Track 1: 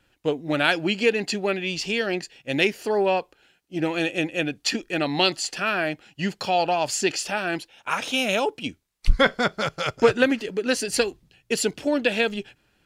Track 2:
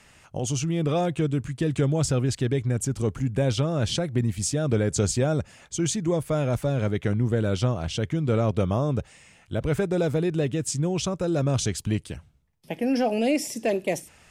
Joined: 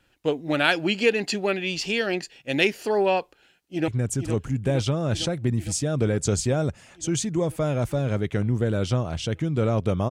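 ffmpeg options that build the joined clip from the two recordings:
-filter_complex "[0:a]apad=whole_dur=10.1,atrim=end=10.1,atrim=end=3.882[a];[1:a]atrim=start=2.588:end=8.81[b];[a][b]acrossfade=d=0.004:c1=hsin:c2=hsin,asplit=2[c][d];[d]afade=t=in:st=3.39:d=0.01,afade=t=out:st=3.88:d=0.01,aecho=0:1:460|920|1380|1840|2300|2760|3220|3680|4140|4600|5060|5520:0.375837|0.281878|0.211409|0.158556|0.118917|0.089188|0.066891|0.0501682|0.0376262|0.0282196|0.0211647|0.0158735[e];[c][e]amix=inputs=2:normalize=0"

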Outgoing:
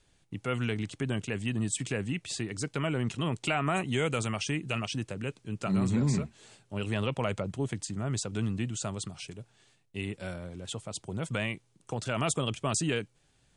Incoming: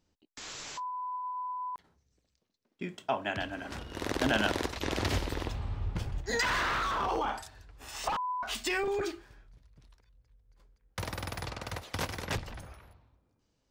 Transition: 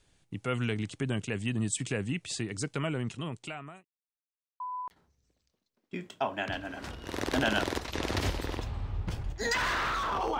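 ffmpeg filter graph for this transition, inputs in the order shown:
-filter_complex "[0:a]apad=whole_dur=10.39,atrim=end=10.39,asplit=2[a][b];[a]atrim=end=3.85,asetpts=PTS-STARTPTS,afade=t=out:st=2.68:d=1.17[c];[b]atrim=start=3.85:end=4.6,asetpts=PTS-STARTPTS,volume=0[d];[1:a]atrim=start=1.48:end=7.27,asetpts=PTS-STARTPTS,afade=t=in:d=0.004:c=hsin[e];[c][d][e]concat=n=3:v=0:a=1"

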